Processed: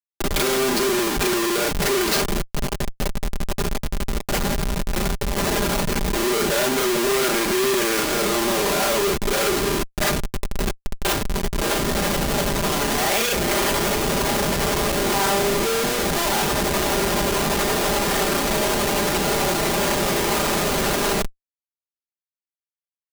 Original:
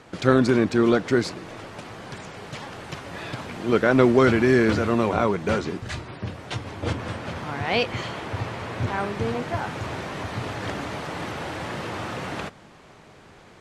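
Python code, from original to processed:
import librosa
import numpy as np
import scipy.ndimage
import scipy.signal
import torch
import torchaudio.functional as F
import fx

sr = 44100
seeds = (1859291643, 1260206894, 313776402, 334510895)

y = scipy.signal.sosfilt(scipy.signal.cheby1(4, 1.0, 300.0, 'highpass', fs=sr, output='sos'), x)
y = fx.stretch_grains(y, sr, factor=1.7, grain_ms=171.0)
y = fx.schmitt(y, sr, flips_db=-34.0)
y = fx.high_shelf(y, sr, hz=3300.0, db=7.5)
y = y + 0.59 * np.pad(y, (int(5.0 * sr / 1000.0), 0))[:len(y)]
y = y * librosa.db_to_amplitude(5.5)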